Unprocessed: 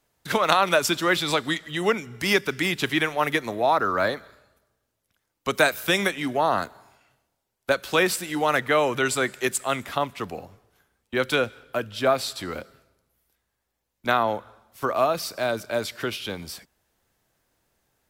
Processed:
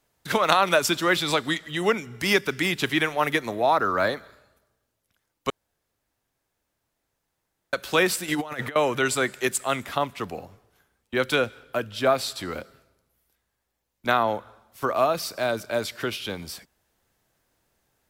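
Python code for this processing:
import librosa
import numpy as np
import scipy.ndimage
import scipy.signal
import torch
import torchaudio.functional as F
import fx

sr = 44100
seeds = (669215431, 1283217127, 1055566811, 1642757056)

y = fx.over_compress(x, sr, threshold_db=-28.0, ratio=-0.5, at=(8.28, 8.76))
y = fx.edit(y, sr, fx.room_tone_fill(start_s=5.5, length_s=2.23), tone=tone)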